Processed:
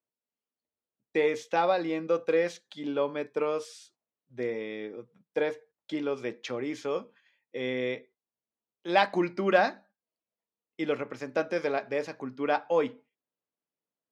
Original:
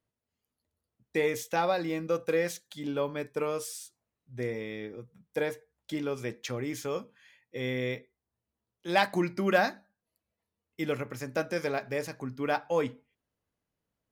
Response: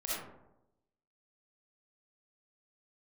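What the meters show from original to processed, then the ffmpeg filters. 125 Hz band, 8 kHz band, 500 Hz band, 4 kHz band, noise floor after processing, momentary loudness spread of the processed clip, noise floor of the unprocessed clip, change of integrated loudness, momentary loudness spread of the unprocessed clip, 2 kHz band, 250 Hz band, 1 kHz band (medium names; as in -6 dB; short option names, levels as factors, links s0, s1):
-6.0 dB, no reading, +2.5 dB, 0.0 dB, under -85 dBFS, 13 LU, under -85 dBFS, +1.5 dB, 12 LU, 0.0 dB, +0.5 dB, +2.5 dB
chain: -af "agate=range=0.316:threshold=0.00158:ratio=16:detection=peak,highpass=250,lowpass=3900,equalizer=f=1800:t=o:w=0.98:g=-3,volume=1.41"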